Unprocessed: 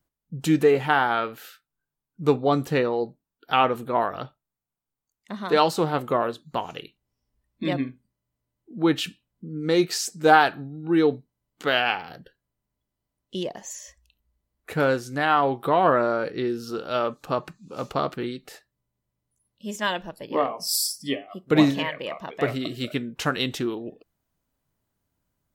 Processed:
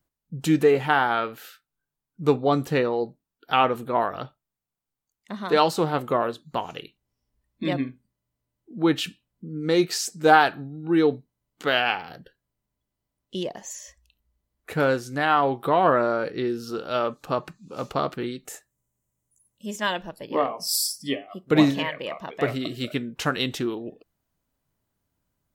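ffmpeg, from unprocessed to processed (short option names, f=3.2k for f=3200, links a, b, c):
-filter_complex "[0:a]asettb=1/sr,asplit=3[a][b][c];[a]atrim=end=18.454[d];[b]atrim=start=18.45:end=19.66,asetpts=PTS-STARTPTS,afade=t=in:d=0.004:c=qsin,afade=t=out:st=1.206:d=0.004:c=qsin,highshelf=f=5.7k:t=q:w=3:g=7[e];[c]atrim=start=19.656[f];[d][e]acrossfade=d=0.004:c1=hsin:c2=qsin[g];[g][f]acrossfade=d=0.004:c1=qsin:c2=hsin"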